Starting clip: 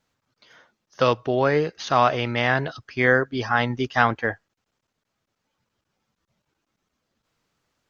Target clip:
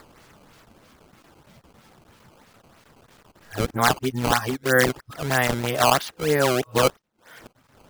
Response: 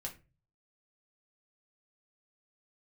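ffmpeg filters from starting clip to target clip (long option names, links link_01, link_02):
-af "areverse,acompressor=mode=upward:threshold=-33dB:ratio=2.5,acrusher=samples=14:mix=1:aa=0.000001:lfo=1:lforange=22.4:lforate=3.1"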